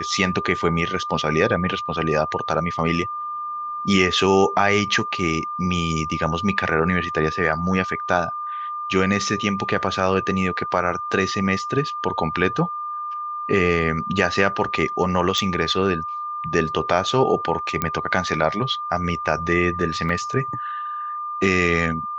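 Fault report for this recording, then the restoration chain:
whine 1.2 kHz -26 dBFS
15.38 s: pop -10 dBFS
17.82 s: pop -7 dBFS
20.09 s: dropout 3.4 ms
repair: de-click; band-stop 1.2 kHz, Q 30; interpolate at 20.09 s, 3.4 ms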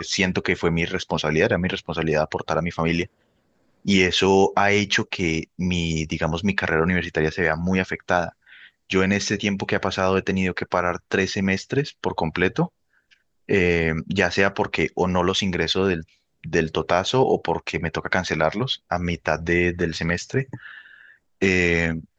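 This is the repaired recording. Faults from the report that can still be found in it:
nothing left

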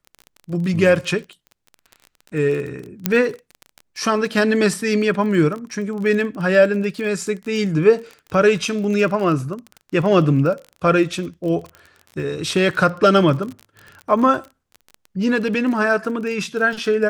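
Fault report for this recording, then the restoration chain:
crackle 27 per s -27 dBFS
3.06 s: pop -1 dBFS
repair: de-click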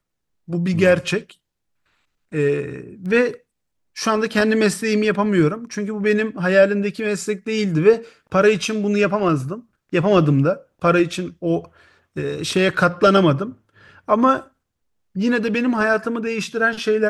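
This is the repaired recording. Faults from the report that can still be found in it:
3.06 s: pop

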